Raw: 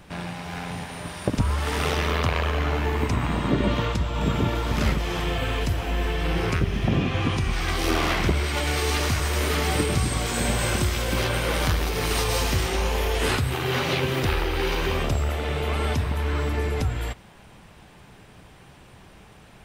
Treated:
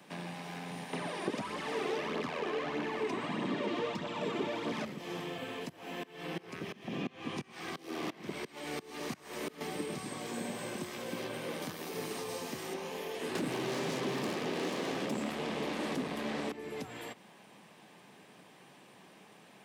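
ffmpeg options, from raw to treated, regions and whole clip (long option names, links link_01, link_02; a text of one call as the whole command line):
ffmpeg -i in.wav -filter_complex "[0:a]asettb=1/sr,asplit=3[link_01][link_02][link_03];[link_01]atrim=end=0.934[link_04];[link_02]atrim=start=0.93:end=4.85,asetpts=PTS-STARTPTS,afade=type=in:duration=0.004:curve=qsin,afade=type=out:start_time=3.916:duration=0.004:curve=qsin,lowpass=frequency=12000:width=0.5412,lowpass=frequency=12000:width=1.3066,aphaser=in_gain=1:out_gain=1:delay=3:decay=0.54:speed=1.6:type=triangular,asplit=2[link_05][link_06];[link_06]highpass=frequency=720:poles=1,volume=23dB,asoftclip=type=tanh:threshold=-5.5dB[link_07];[link_05][link_07]amix=inputs=2:normalize=0,lowpass=frequency=2700:poles=1,volume=-6dB[link_08];[link_03]atrim=start=4.846[link_09];[link_04][link_08]acrossfade=duration=0.004:curve1=hsin:curve2=qsin[link_10];[link_10][link_09]acrossfade=duration=0.004:curve1=qsin:curve2=hsin,asettb=1/sr,asplit=3[link_11][link_12][link_13];[link_11]atrim=end=5.694[link_14];[link_12]atrim=start=5.69:end=9.61,asetpts=PTS-STARTPTS,afade=type=in:duration=0.004:curve=qsin,afade=type=out:start_time=3.916:duration=0.004:curve=qsin,acontrast=56,aeval=exprs='val(0)*pow(10,-25*if(lt(mod(-2.9*n/s,1),2*abs(-2.9)/1000),1-mod(-2.9*n/s,1)/(2*abs(-2.9)/1000),(mod(-2.9*n/s,1)-2*abs(-2.9)/1000)/(1-2*abs(-2.9)/1000))/20)':channel_layout=same[link_15];[link_13]atrim=start=9.606[link_16];[link_14][link_15]acrossfade=duration=0.004:curve1=hsin:curve2=qsin[link_17];[link_17][link_16]acrossfade=duration=0.004:curve1=qsin:curve2=hsin,asettb=1/sr,asplit=3[link_18][link_19][link_20];[link_18]atrim=end=11.624[link_21];[link_19]atrim=start=11.62:end=12.74,asetpts=PTS-STARTPTS,afade=type=in:duration=0.004:curve=qsin,afade=type=out:start_time=1.116:duration=0.004:curve=qsin,acrossover=split=9200[link_22][link_23];[link_23]acompressor=threshold=-45dB:ratio=4:attack=1:release=60[link_24];[link_22][link_24]amix=inputs=2:normalize=0,aemphasis=mode=production:type=50kf[link_25];[link_20]atrim=start=12.736[link_26];[link_21][link_25]acrossfade=duration=0.004:curve1=hsin:curve2=qsin[link_27];[link_27][link_26]acrossfade=duration=0.004:curve1=qsin:curve2=hsin,asettb=1/sr,asplit=3[link_28][link_29][link_30];[link_28]atrim=end=13.354[link_31];[link_29]atrim=start=13.35:end=16.52,asetpts=PTS-STARTPTS,afade=type=in:duration=0.004:curve=qsin,afade=type=out:start_time=3.166:duration=0.004:curve=qsin,lowpass=11000,aeval=exprs='0.299*sin(PI/2*5.62*val(0)/0.299)':channel_layout=same[link_32];[link_30]atrim=start=16.516[link_33];[link_31][link_32]acrossfade=duration=0.004:curve1=hsin:curve2=qsin[link_34];[link_34][link_33]acrossfade=duration=0.004:curve1=qsin:curve2=hsin,acrossover=split=470|1900[link_35][link_36][link_37];[link_35]acompressor=threshold=-27dB:ratio=4[link_38];[link_36]acompressor=threshold=-40dB:ratio=4[link_39];[link_37]acompressor=threshold=-43dB:ratio=4[link_40];[link_38][link_39][link_40]amix=inputs=3:normalize=0,highpass=frequency=180:width=0.5412,highpass=frequency=180:width=1.3066,bandreject=frequency=1400:width=9.2,volume=-5.5dB" out.wav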